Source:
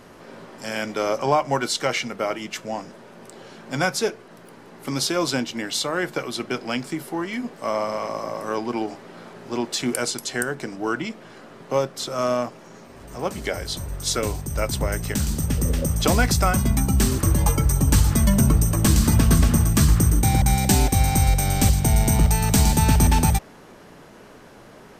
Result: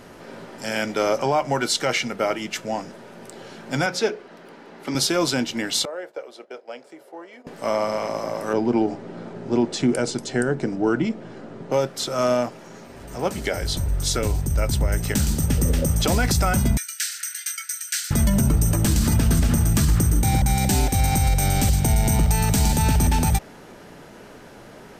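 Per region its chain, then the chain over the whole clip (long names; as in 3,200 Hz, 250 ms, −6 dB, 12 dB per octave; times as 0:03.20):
0:03.86–0:04.95: three-way crossover with the lows and the highs turned down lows −12 dB, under 170 Hz, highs −13 dB, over 5,800 Hz + mains-hum notches 60/120/180/240/300/360/420/480/540 Hz
0:05.85–0:07.47: spectral tilt +4.5 dB per octave + noise gate −36 dBFS, range −9 dB + resonant band-pass 530 Hz, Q 3.2
0:08.53–0:11.72: low-pass filter 9,000 Hz 24 dB per octave + tilt shelving filter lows +6.5 dB, about 800 Hz
0:13.63–0:14.98: low-shelf EQ 120 Hz +10 dB + downward compressor 2 to 1, threshold −22 dBFS
0:16.77–0:18.11: Chebyshev high-pass with heavy ripple 1,400 Hz, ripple 3 dB + high-shelf EQ 11,000 Hz −5 dB + double-tracking delay 27 ms −11 dB
whole clip: notch filter 1,100 Hz, Q 11; brickwall limiter −13 dBFS; level +2.5 dB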